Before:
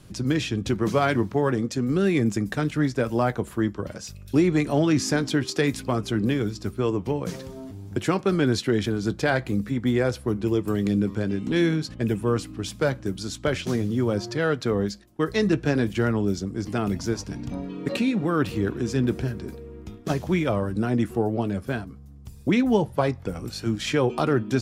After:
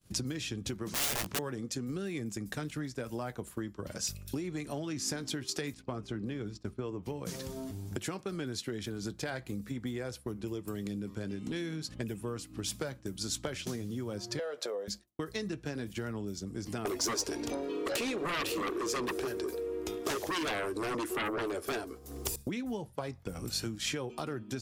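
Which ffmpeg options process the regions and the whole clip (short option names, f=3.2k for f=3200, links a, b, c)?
-filter_complex "[0:a]asettb=1/sr,asplit=3[a][b][c];[a]atrim=end=0.894[d];[b]atrim=start=0.89:end=1.39,asetpts=PTS-STARTPTS,afade=t=in:d=0.004:c=qsin,afade=t=out:st=0.496:d=0.004:c=qsin,lowpass=9.9k,aeval=exprs='(mod(11.2*val(0)+1,2)-1)/11.2':c=same,asplit=2[e][f];[f]adelay=17,volume=-10dB[g];[e][g]amix=inputs=2:normalize=0,atrim=end_sample=22050[h];[c]atrim=start=1.386[i];[d][h]acrossfade=d=0.004:c1=hsin:c2=qsin[j];[j][i]acrossfade=d=0.004:c1=qsin:c2=hsin,asettb=1/sr,asplit=3[k][l][m];[k]atrim=end=5.744[n];[l]atrim=start=5.74:end=7.03,asetpts=PTS-STARTPTS,afade=t=in:d=0.004:c=qsin,afade=t=out:st=1.286:d=0.004:c=qsin,lowpass=8.5k,highshelf=f=3.4k:g=-9.5,agate=range=-7dB:threshold=-39dB:ratio=16:release=100:detection=peak[o];[m]atrim=start=7.026[p];[n][o]acrossfade=d=0.004:c1=hsin:c2=qsin[q];[q][p]acrossfade=d=0.004:c1=qsin:c2=hsin,asettb=1/sr,asplit=3[r][s][t];[r]atrim=end=14.394[u];[s]atrim=start=14.39:end=14.88,asetpts=PTS-STARTPTS,afade=t=in:d=0.004:c=qsin,afade=t=out:st=0.486:d=0.004:c=qsin,acompressor=threshold=-26dB:ratio=5:attack=3.2:release=140:knee=1:detection=peak,highpass=f=540:t=q:w=4.3,asplit=2[v][w];[w]adelay=14,volume=-11dB[x];[v][x]amix=inputs=2:normalize=0,atrim=end_sample=21609[y];[t]atrim=start=14.876[z];[u][y]acrossfade=d=0.004:c1=hsin:c2=qsin[aa];[aa][z]acrossfade=d=0.004:c1=qsin:c2=hsin,asettb=1/sr,asplit=3[ab][ac][ad];[ab]atrim=end=16.854[ae];[ac]atrim=start=16.85:end=22.36,asetpts=PTS-STARTPTS,afade=t=in:d=0.004:c=qsin,afade=t=out:st=5.506:d=0.004:c=qsin,lowshelf=f=260:t=q:w=3:g=-13,aeval=exprs='0.376*sin(PI/2*5.62*val(0)/0.376)':c=same[af];[ad]atrim=start=22.356[ag];[ae][af]acrossfade=d=0.004:c1=hsin:c2=qsin[ah];[ah][ag]acrossfade=d=0.004:c1=qsin:c2=hsin,acompressor=threshold=-32dB:ratio=10,agate=range=-33dB:threshold=-39dB:ratio=3:detection=peak,highshelf=f=4.4k:g=11,volume=-2dB"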